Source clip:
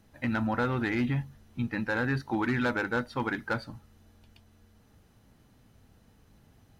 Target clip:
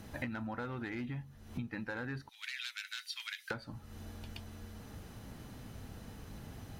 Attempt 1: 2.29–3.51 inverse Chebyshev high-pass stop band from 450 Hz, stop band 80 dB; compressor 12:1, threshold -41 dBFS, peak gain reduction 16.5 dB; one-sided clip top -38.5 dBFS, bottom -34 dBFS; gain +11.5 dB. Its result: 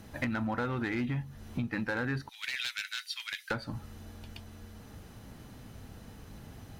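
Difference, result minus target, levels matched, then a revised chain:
compressor: peak gain reduction -8 dB
2.29–3.51 inverse Chebyshev high-pass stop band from 450 Hz, stop band 80 dB; compressor 12:1, threshold -49.5 dBFS, peak gain reduction 24.5 dB; one-sided clip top -38.5 dBFS, bottom -34 dBFS; gain +11.5 dB

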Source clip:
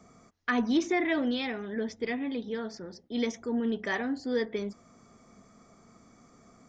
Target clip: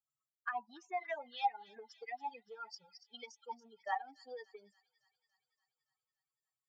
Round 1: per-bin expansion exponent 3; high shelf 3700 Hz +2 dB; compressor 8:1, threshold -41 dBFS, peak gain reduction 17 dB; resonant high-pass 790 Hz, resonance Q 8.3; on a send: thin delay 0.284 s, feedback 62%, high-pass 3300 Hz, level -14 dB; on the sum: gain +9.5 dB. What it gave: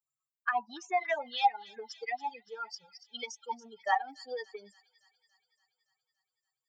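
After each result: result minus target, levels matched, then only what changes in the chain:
compressor: peak gain reduction -9 dB; 8000 Hz band +4.5 dB
change: compressor 8:1, threshold -51.5 dBFS, peak gain reduction 26 dB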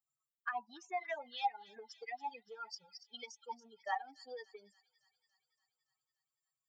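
8000 Hz band +5.0 dB
change: high shelf 3700 Hz -5.5 dB

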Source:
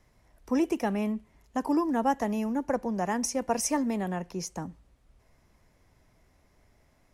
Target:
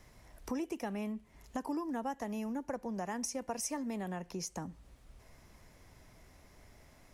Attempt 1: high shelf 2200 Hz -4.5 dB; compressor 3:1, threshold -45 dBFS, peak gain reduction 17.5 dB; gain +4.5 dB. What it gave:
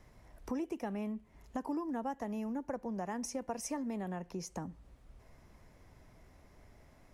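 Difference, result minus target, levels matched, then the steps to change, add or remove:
4000 Hz band -4.5 dB
change: high shelf 2200 Hz +3.5 dB

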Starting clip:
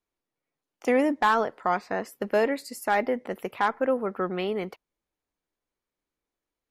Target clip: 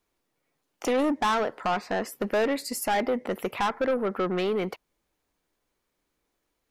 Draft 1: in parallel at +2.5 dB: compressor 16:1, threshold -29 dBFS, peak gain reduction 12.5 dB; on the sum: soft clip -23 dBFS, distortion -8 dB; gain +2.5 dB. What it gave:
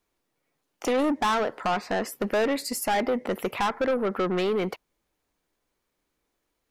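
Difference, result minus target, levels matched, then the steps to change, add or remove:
compressor: peak gain reduction -7.5 dB
change: compressor 16:1, threshold -37 dBFS, peak gain reduction 20 dB

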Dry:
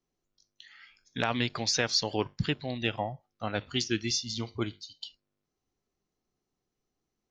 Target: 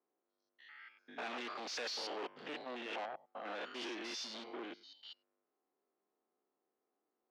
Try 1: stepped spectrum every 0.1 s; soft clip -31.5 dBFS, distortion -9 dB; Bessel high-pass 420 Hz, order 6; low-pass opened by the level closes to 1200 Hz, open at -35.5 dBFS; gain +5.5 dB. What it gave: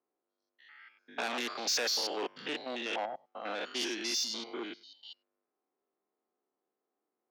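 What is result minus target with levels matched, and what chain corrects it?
soft clip: distortion -5 dB
stepped spectrum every 0.1 s; soft clip -42 dBFS, distortion -3 dB; Bessel high-pass 420 Hz, order 6; low-pass opened by the level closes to 1200 Hz, open at -35.5 dBFS; gain +5.5 dB

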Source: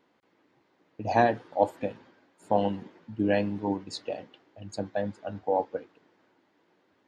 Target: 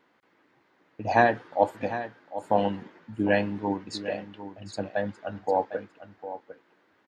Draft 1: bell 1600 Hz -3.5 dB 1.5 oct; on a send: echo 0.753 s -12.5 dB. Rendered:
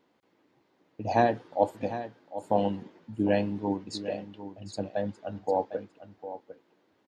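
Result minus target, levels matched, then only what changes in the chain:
2000 Hz band -7.0 dB
change: bell 1600 Hz +6.5 dB 1.5 oct

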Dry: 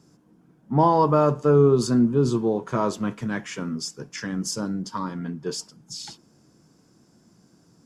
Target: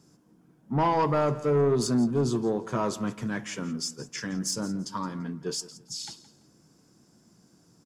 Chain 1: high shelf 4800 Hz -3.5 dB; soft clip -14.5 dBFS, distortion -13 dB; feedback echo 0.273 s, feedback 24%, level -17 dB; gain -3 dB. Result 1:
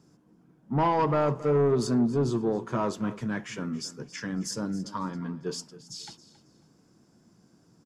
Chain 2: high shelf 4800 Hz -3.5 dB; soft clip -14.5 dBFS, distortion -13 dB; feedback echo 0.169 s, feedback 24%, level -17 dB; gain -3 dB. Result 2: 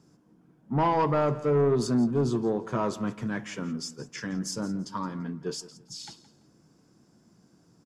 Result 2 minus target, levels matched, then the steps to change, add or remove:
8000 Hz band -5.5 dB
change: high shelf 4800 Hz +5 dB

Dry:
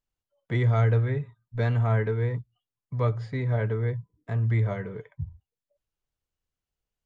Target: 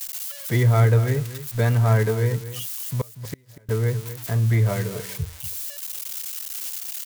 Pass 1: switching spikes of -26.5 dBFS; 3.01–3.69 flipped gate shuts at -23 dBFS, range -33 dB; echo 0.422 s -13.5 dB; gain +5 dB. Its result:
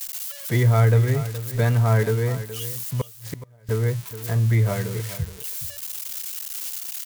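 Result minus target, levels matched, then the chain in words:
echo 0.183 s late
switching spikes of -26.5 dBFS; 3.01–3.69 flipped gate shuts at -23 dBFS, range -33 dB; echo 0.239 s -13.5 dB; gain +5 dB

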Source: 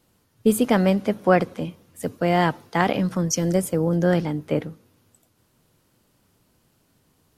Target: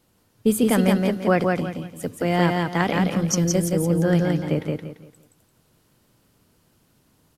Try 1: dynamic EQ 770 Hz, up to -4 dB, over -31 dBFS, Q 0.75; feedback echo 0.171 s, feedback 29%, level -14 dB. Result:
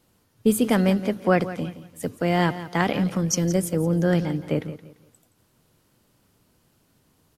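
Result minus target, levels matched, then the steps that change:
echo-to-direct -11 dB
change: feedback echo 0.171 s, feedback 29%, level -3 dB

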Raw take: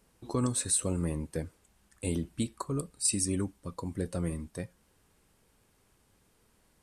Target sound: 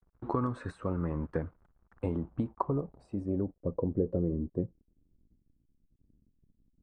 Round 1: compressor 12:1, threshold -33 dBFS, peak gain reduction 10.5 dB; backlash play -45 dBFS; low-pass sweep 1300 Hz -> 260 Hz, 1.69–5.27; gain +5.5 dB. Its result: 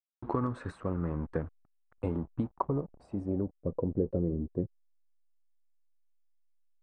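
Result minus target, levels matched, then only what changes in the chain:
backlash: distortion +7 dB
change: backlash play -53.5 dBFS

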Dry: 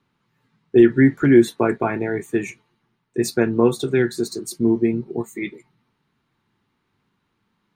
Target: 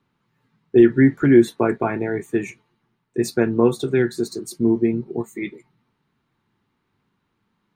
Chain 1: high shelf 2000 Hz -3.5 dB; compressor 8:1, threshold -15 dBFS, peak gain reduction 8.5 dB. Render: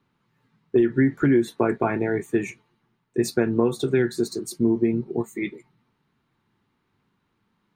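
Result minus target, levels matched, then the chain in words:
compressor: peak gain reduction +8.5 dB
high shelf 2000 Hz -3.5 dB

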